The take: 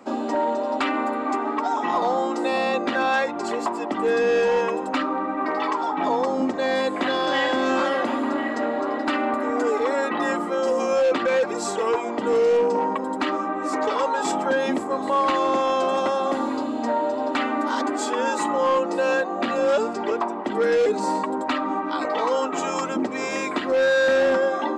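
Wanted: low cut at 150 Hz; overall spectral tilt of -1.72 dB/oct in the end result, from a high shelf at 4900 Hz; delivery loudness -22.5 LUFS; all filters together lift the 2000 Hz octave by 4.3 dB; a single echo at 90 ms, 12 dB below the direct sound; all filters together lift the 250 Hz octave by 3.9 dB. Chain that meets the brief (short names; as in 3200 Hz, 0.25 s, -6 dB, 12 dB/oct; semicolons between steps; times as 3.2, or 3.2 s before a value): HPF 150 Hz; bell 250 Hz +5 dB; bell 2000 Hz +4.5 dB; high shelf 4900 Hz +6.5 dB; echo 90 ms -12 dB; gain -2 dB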